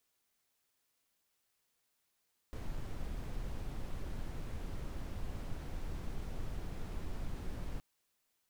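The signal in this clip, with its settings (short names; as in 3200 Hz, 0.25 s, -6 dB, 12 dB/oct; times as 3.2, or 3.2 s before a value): noise brown, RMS -39 dBFS 5.27 s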